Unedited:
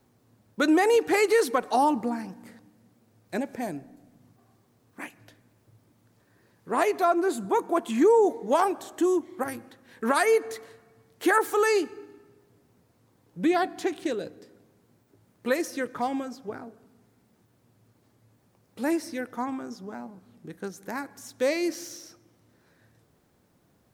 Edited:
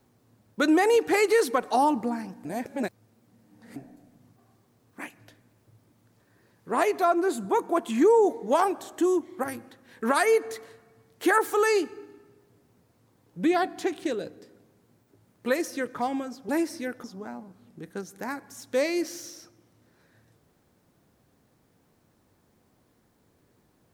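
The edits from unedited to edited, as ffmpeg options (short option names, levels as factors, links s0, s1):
-filter_complex "[0:a]asplit=5[s0][s1][s2][s3][s4];[s0]atrim=end=2.452[s5];[s1]atrim=start=2.448:end=3.762,asetpts=PTS-STARTPTS,areverse[s6];[s2]atrim=start=3.758:end=16.492[s7];[s3]atrim=start=18.818:end=19.372[s8];[s4]atrim=start=19.708[s9];[s5][s6]acrossfade=d=0.004:c1=hsin:c2=hsin[s10];[s10][s7]acrossfade=d=0.004:c1=hsin:c2=hsin[s11];[s11][s8]acrossfade=d=0.004:c1=hsin:c2=hsin[s12];[s12][s9]acrossfade=d=0.004:c1=hsin:c2=hsin"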